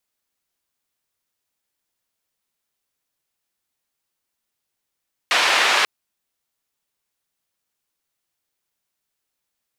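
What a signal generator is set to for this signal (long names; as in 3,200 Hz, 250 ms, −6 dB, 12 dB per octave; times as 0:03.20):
band-limited noise 670–2,900 Hz, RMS −17.5 dBFS 0.54 s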